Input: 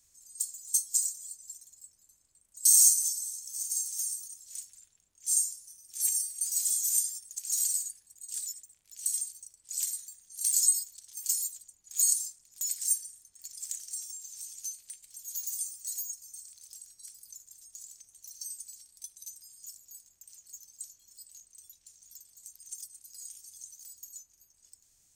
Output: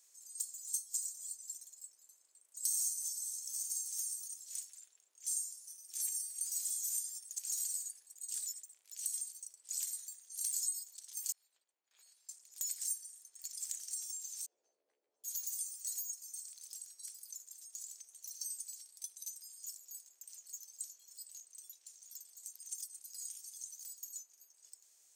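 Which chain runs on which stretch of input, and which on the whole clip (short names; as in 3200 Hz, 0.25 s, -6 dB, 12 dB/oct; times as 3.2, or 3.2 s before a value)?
11.32–12.29 gate -53 dBFS, range -7 dB + compressor 1.5:1, threshold -54 dBFS + air absorption 430 m
14.46–15.24 synth low-pass 510 Hz, resonance Q 1.8 + doubler 14 ms -3.5 dB
whole clip: HPF 390 Hz 24 dB/oct; dynamic EQ 770 Hz, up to +6 dB, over -59 dBFS, Q 0.78; compressor 3:1, threshold -38 dBFS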